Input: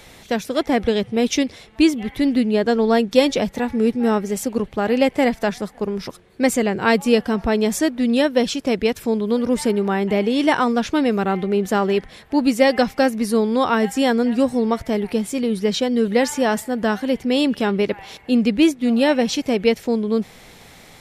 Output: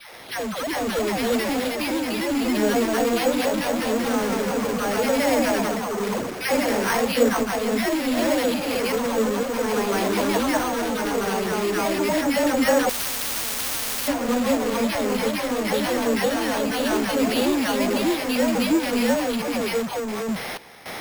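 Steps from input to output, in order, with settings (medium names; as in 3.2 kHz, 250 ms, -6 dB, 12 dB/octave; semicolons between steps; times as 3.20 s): treble shelf 3.7 kHz -11 dB; phase dispersion lows, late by 143 ms, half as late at 590 Hz; random-step tremolo, depth 90%; overdrive pedal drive 31 dB, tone 4.8 kHz, clips at -22 dBFS; ever faster or slower copies 395 ms, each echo +1 st, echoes 3; careless resampling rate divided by 6×, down none, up hold; 12.89–14.08 s: spectrum-flattening compressor 10:1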